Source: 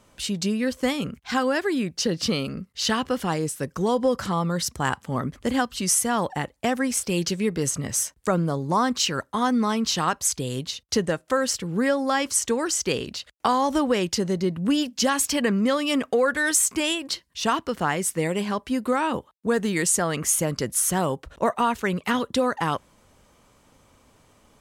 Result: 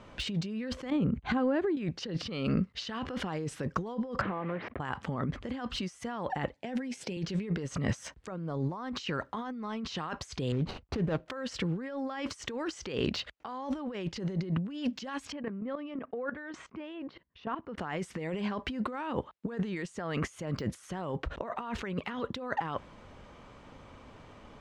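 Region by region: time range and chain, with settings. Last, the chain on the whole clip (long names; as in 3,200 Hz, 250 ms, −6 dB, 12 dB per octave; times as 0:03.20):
0:00.90–0:01.77: tilt shelving filter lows +8.5 dB, about 820 Hz + downward compressor, threshold −31 dBFS + Butterworth band-reject 5,300 Hz, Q 5.1
0:04.21–0:04.80: one scale factor per block 3 bits + loudspeaker in its box 130–2,100 Hz, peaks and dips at 160 Hz −9 dB, 940 Hz −5 dB, 1,400 Hz −5 dB + downward compressor 16 to 1, threshold −36 dBFS
0:06.54–0:07.17: high-pass filter 120 Hz 24 dB per octave + parametric band 1,200 Hz −14.5 dB 0.4 octaves + double-tracking delay 12 ms −11 dB
0:10.52–0:11.26: running median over 25 samples + low-shelf EQ 76 Hz +8 dB + downward compressor 5 to 1, threshold −25 dBFS
0:15.32–0:17.78: high-pass filter 88 Hz 6 dB per octave + output level in coarse steps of 22 dB + head-to-tape spacing loss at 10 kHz 38 dB
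whole clip: compressor whose output falls as the input rises −33 dBFS, ratio −1; low-pass filter 3,200 Hz 12 dB per octave; de-essing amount 85%; level −1 dB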